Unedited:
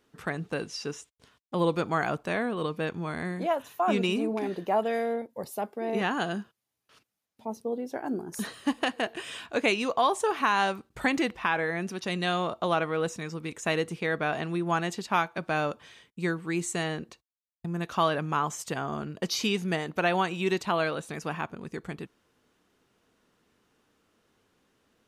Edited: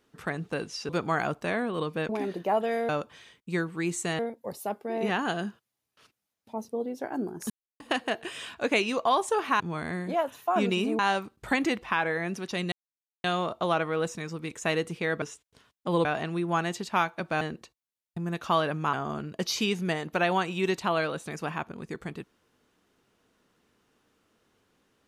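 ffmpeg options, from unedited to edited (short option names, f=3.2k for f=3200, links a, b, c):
-filter_complex "[0:a]asplit=14[a][b][c][d][e][f][g][h][i][j][k][l][m][n];[a]atrim=end=0.892[o];[b]atrim=start=1.718:end=2.922[p];[c]atrim=start=4.308:end=5.112[q];[d]atrim=start=15.588:end=16.892[r];[e]atrim=start=5.108:end=8.42,asetpts=PTS-STARTPTS,afade=t=out:st=3.308:d=0.004:c=hsin[s];[f]atrim=start=8.42:end=8.72,asetpts=PTS-STARTPTS,volume=0[t];[g]atrim=start=8.72:end=10.522,asetpts=PTS-STARTPTS,afade=t=in:d=0.004:c=hsin[u];[h]atrim=start=2.918:end=4.312[v];[i]atrim=start=10.518:end=12.25,asetpts=PTS-STARTPTS,afade=t=out:st=1.728:d=0.004:c=hsin,apad=pad_dur=0.52[w];[j]atrim=start=12.25:end=14.232,asetpts=PTS-STARTPTS,afade=t=in:d=0.004:c=hsin[x];[k]atrim=start=0.888:end=1.722[y];[l]atrim=start=14.228:end=15.592[z];[m]atrim=start=16.888:end=18.412[aa];[n]atrim=start=18.758[ab];[o][p]acrossfade=d=0.004:c1=hsin:c2=hsin[ac];[ac][q]acrossfade=d=0.004:c1=hsin:c2=hsin[ad];[ad][r]acrossfade=d=0.004:c1=hsin:c2=hsin[ae];[s][t][u]concat=n=3:v=0:a=1[af];[ae][af]acrossfade=d=0.004:c1=hsin:c2=hsin[ag];[ag][v]acrossfade=d=0.004:c1=hsin:c2=hsin[ah];[w][x]concat=n=2:v=0:a=1[ai];[ah][ai]acrossfade=d=0.004:c1=hsin:c2=hsin[aj];[aj][y]acrossfade=d=0.004:c1=hsin:c2=hsin[ak];[ak][z]acrossfade=d=0.004:c1=hsin:c2=hsin[al];[al][aa]acrossfade=d=0.004:c1=hsin:c2=hsin[am];[am][ab]acrossfade=d=0.004:c1=hsin:c2=hsin"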